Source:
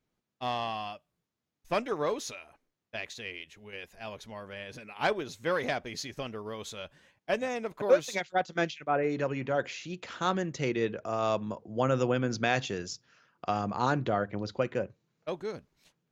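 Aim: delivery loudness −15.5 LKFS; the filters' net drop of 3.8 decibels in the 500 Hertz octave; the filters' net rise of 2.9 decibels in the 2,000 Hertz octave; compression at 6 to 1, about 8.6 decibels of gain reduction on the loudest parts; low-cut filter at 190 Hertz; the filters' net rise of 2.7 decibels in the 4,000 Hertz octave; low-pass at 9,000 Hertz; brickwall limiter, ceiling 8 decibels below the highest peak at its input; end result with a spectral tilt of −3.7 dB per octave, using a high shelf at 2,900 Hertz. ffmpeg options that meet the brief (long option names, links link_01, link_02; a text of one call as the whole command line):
ffmpeg -i in.wav -af "highpass=190,lowpass=9000,equalizer=frequency=500:width_type=o:gain=-4.5,equalizer=frequency=2000:width_type=o:gain=4.5,highshelf=frequency=2900:gain=-4.5,equalizer=frequency=4000:width_type=o:gain=5.5,acompressor=threshold=-30dB:ratio=6,volume=23dB,alimiter=limit=-1dB:level=0:latency=1" out.wav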